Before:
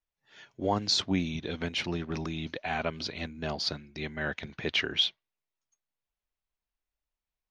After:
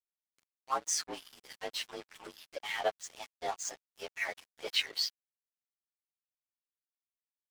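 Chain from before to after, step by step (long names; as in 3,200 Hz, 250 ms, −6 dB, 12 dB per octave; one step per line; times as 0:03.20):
partials spread apart or drawn together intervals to 112%
auto-filter high-pass sine 3.4 Hz 520–2,100 Hz
dead-zone distortion −43.5 dBFS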